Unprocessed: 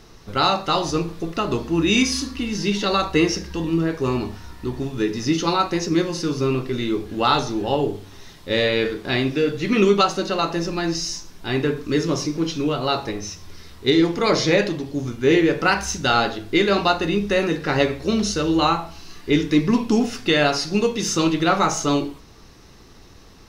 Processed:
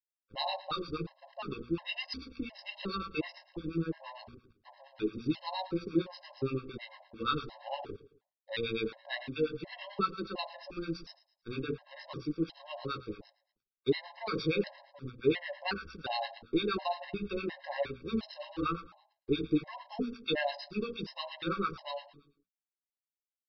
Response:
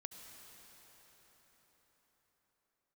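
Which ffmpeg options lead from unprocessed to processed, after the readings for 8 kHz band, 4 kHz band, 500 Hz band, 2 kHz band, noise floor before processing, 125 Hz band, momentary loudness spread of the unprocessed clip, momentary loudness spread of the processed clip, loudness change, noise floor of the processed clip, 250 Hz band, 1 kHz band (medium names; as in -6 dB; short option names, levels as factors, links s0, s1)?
under -35 dB, -15.5 dB, -15.0 dB, -16.0 dB, -46 dBFS, -16.0 dB, 8 LU, 11 LU, -15.5 dB, under -85 dBFS, -15.5 dB, -15.5 dB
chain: -filter_complex "[0:a]aresample=11025,aeval=exprs='sgn(val(0))*max(abs(val(0))-0.0188,0)':c=same,aresample=44100,acrossover=split=830[s0][s1];[s0]aeval=exprs='val(0)*(1-1/2+1/2*cos(2*PI*8.7*n/s))':c=same[s2];[s1]aeval=exprs='val(0)*(1-1/2-1/2*cos(2*PI*8.7*n/s))':c=same[s3];[s2][s3]amix=inputs=2:normalize=0,bandreject=f=60:t=h:w=6,bandreject=f=120:t=h:w=6,bandreject=f=180:t=h:w=6,bandreject=f=240:t=h:w=6,agate=range=0.0224:threshold=0.00794:ratio=3:detection=peak,asplit=2[s4][s5];[s5]aecho=0:1:111|222|333:0.119|0.0475|0.019[s6];[s4][s6]amix=inputs=2:normalize=0,afftfilt=real='re*gt(sin(2*PI*1.4*pts/sr)*(1-2*mod(floor(b*sr/1024/540),2)),0)':imag='im*gt(sin(2*PI*1.4*pts/sr)*(1-2*mod(floor(b*sr/1024/540),2)),0)':win_size=1024:overlap=0.75,volume=0.473"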